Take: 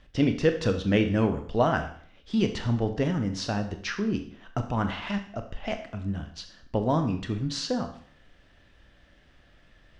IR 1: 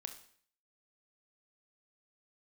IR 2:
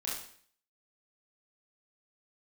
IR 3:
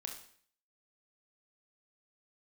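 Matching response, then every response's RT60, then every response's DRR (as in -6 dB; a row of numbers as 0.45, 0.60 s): 1; 0.55, 0.55, 0.55 s; 6.5, -6.0, 2.0 dB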